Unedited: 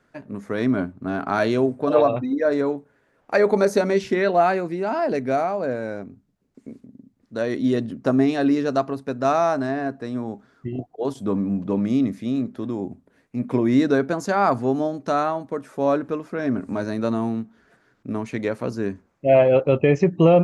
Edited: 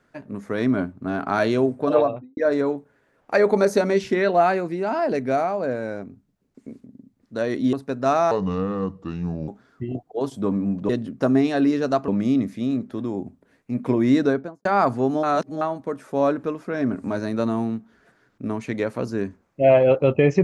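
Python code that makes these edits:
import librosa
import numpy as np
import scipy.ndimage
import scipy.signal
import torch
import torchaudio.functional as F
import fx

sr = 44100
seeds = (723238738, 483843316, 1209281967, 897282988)

y = fx.studio_fade_out(x, sr, start_s=1.88, length_s=0.49)
y = fx.studio_fade_out(y, sr, start_s=13.85, length_s=0.45)
y = fx.edit(y, sr, fx.move(start_s=7.73, length_s=1.19, to_s=11.73),
    fx.speed_span(start_s=9.5, length_s=0.82, speed=0.7),
    fx.reverse_span(start_s=14.88, length_s=0.38), tone=tone)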